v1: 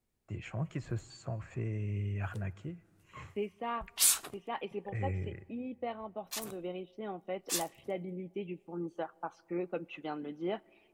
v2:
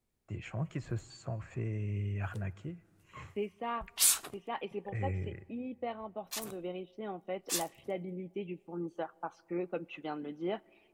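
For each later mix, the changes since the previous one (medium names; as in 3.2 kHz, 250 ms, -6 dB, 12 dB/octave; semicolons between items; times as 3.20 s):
no change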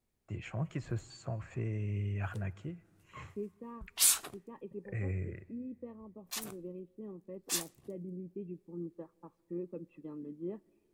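second voice: add boxcar filter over 60 samples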